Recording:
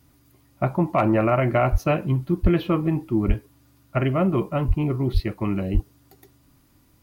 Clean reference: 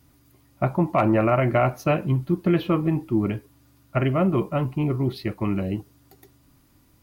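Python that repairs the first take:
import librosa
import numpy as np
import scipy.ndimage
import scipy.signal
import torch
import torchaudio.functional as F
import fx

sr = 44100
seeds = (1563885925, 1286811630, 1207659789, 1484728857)

y = fx.fix_deplosive(x, sr, at_s=(1.71, 2.42, 3.27, 4.67, 5.13, 5.73))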